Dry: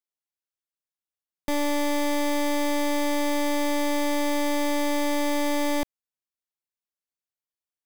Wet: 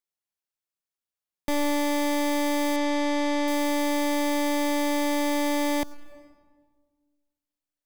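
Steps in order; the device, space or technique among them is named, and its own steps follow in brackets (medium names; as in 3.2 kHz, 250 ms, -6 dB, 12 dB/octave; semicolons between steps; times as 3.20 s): 2.76–3.48 s: low-pass 5.8 kHz 12 dB/octave; saturated reverb return (on a send at -13 dB: reverberation RT60 1.5 s, pre-delay 80 ms + saturation -22 dBFS, distortion -15 dB)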